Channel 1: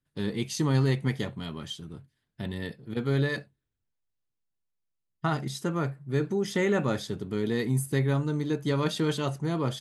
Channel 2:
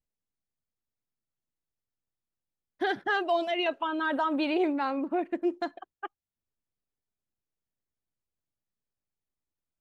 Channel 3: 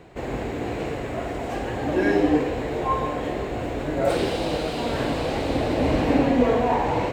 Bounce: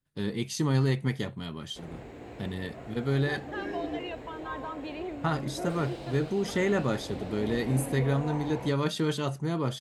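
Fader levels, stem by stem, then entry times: -1.0 dB, -11.0 dB, -16.0 dB; 0.00 s, 0.45 s, 1.60 s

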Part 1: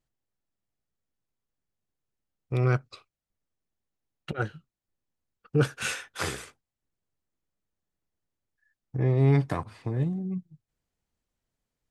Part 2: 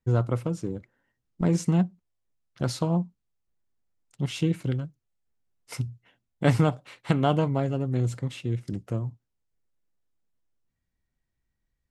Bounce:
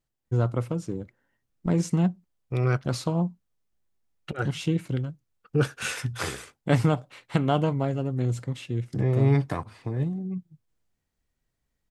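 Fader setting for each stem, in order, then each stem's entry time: 0.0 dB, -0.5 dB; 0.00 s, 0.25 s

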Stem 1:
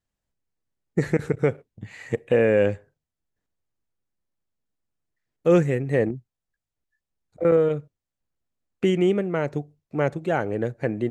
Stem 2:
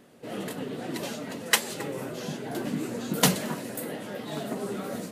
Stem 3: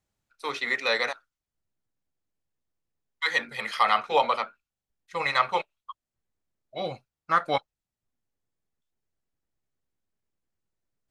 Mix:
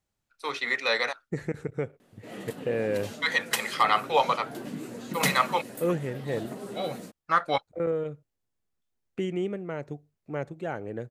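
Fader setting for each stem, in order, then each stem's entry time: -9.5 dB, -6.0 dB, -0.5 dB; 0.35 s, 2.00 s, 0.00 s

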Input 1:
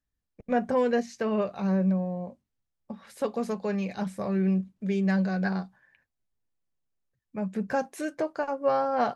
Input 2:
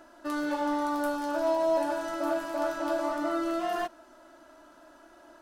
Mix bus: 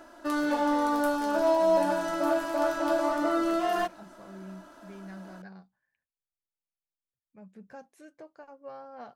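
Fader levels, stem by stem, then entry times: -19.0 dB, +3.0 dB; 0.00 s, 0.00 s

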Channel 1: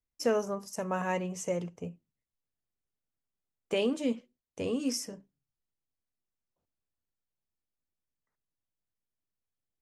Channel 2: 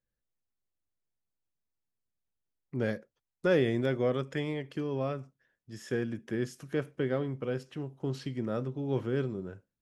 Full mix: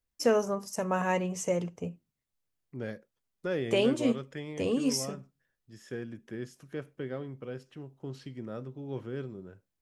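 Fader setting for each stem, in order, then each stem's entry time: +3.0 dB, -6.5 dB; 0.00 s, 0.00 s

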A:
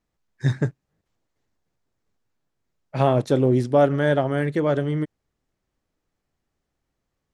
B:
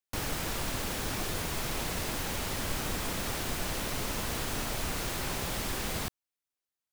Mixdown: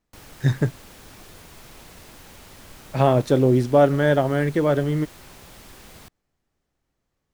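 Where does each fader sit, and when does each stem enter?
+1.5 dB, -11.5 dB; 0.00 s, 0.00 s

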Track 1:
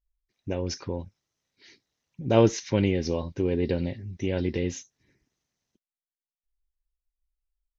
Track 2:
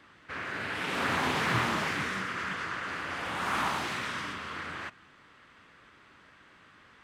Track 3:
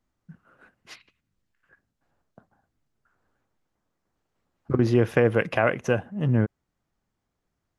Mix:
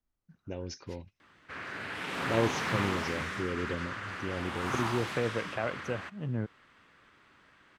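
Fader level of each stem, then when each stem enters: -9.0 dB, -4.0 dB, -11.5 dB; 0.00 s, 1.20 s, 0.00 s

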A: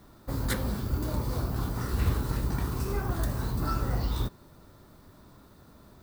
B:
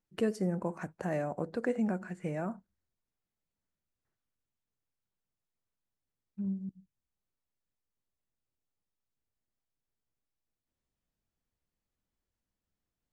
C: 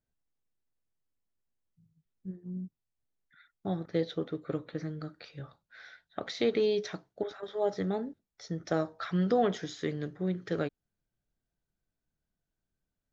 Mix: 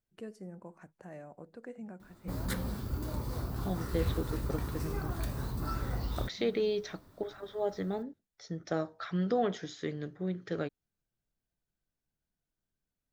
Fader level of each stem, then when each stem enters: -6.0 dB, -14.0 dB, -3.0 dB; 2.00 s, 0.00 s, 0.00 s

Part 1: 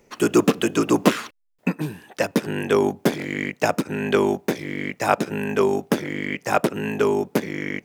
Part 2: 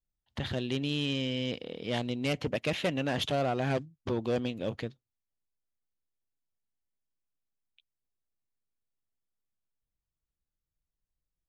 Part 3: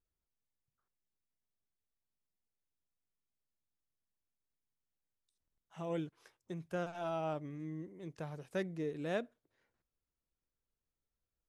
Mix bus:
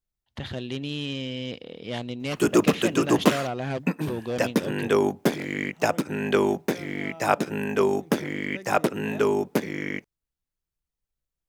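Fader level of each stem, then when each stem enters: -2.5 dB, 0.0 dB, -6.0 dB; 2.20 s, 0.00 s, 0.00 s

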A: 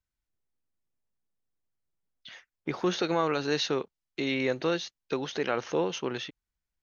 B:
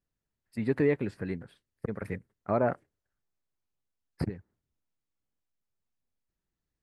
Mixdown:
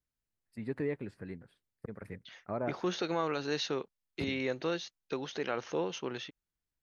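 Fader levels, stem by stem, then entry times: -5.5 dB, -9.0 dB; 0.00 s, 0.00 s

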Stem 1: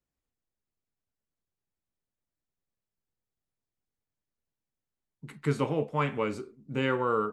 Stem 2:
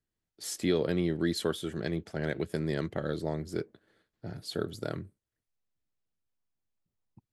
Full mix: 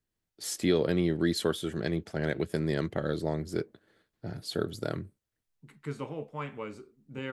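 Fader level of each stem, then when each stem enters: -9.0 dB, +2.0 dB; 0.40 s, 0.00 s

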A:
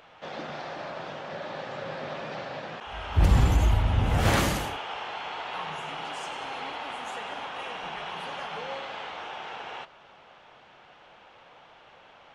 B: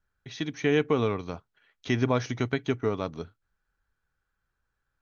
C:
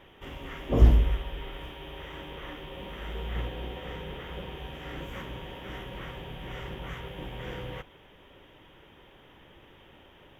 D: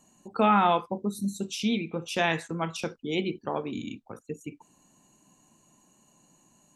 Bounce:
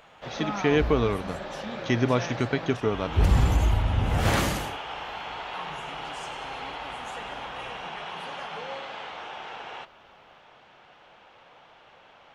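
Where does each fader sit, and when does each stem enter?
-0.5 dB, +1.5 dB, -12.5 dB, -12.5 dB; 0.00 s, 0.00 s, 0.00 s, 0.00 s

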